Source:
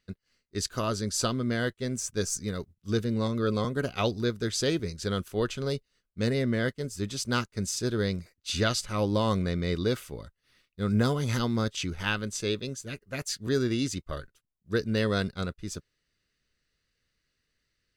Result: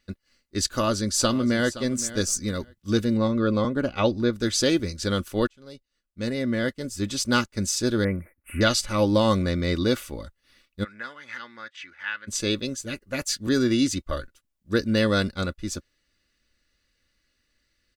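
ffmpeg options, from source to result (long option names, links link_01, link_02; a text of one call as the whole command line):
ffmpeg -i in.wav -filter_complex "[0:a]asplit=2[link_01][link_02];[link_02]afade=type=in:start_time=0.77:duration=0.01,afade=type=out:start_time=1.76:duration=0.01,aecho=0:1:520|1040:0.177828|0.0266742[link_03];[link_01][link_03]amix=inputs=2:normalize=0,asettb=1/sr,asplit=3[link_04][link_05][link_06];[link_04]atrim=end=3.174[link_07];[link_05]atrim=start=3.17:end=4.33,asetpts=PTS-STARTPTS,afade=type=in:duration=0.004:curve=qsin,afade=type=out:start_time=1.156:duration=0.004:curve=qsin,aemphasis=mode=reproduction:type=75kf[link_08];[link_06]atrim=start=4.326[link_09];[link_07][link_08]acrossfade=duration=0.004:curve1=hsin:curve2=qsin[link_10];[link_10][link_09]acrossfade=duration=0.004:curve1=qsin:curve2=hsin,asettb=1/sr,asplit=3[link_11][link_12][link_13];[link_11]atrim=end=8.044[link_14];[link_12]atrim=start=8.04:end=8.61,asetpts=PTS-STARTPTS,afade=type=in:duration=0.004:curve=qsin,afade=type=out:start_time=0.566:duration=0.004:curve=qsin,asuperstop=centerf=4900:order=12:qfactor=0.7[link_15];[link_13]atrim=start=8.606[link_16];[link_14][link_15]acrossfade=duration=0.004:curve1=hsin:curve2=qsin[link_17];[link_17][link_16]acrossfade=duration=0.004:curve1=qsin:curve2=hsin,asplit=3[link_18][link_19][link_20];[link_18]afade=type=out:start_time=10.83:duration=0.02[link_21];[link_19]bandpass=frequency=1800:width_type=q:width=4,afade=type=in:start_time=10.83:duration=0.02,afade=type=out:start_time=12.27:duration=0.02[link_22];[link_20]afade=type=in:start_time=12.27:duration=0.02[link_23];[link_21][link_22][link_23]amix=inputs=3:normalize=0,asplit=2[link_24][link_25];[link_24]atrim=end=5.47,asetpts=PTS-STARTPTS,afade=type=out:start_time=5.466:duration=0.004:curve=hsin[link_26];[link_25]atrim=start=5.47,asetpts=PTS-STARTPTS,afade=type=in:duration=1.67[link_27];[link_26][link_27]concat=n=2:v=0:a=1,aecho=1:1:3.5:0.5,volume=5dB" out.wav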